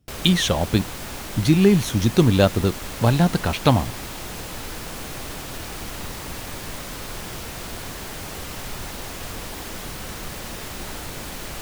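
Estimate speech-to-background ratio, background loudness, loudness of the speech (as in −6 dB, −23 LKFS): 13.0 dB, −32.5 LKFS, −19.5 LKFS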